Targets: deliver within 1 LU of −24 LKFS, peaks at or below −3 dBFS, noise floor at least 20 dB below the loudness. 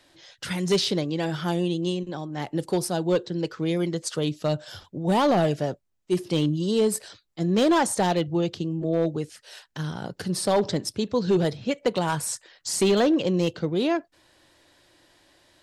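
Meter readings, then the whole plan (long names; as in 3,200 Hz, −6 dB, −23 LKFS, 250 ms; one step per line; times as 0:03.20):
share of clipped samples 0.9%; peaks flattened at −15.0 dBFS; integrated loudness −25.5 LKFS; sample peak −15.0 dBFS; target loudness −24.0 LKFS
→ clipped peaks rebuilt −15 dBFS
level +1.5 dB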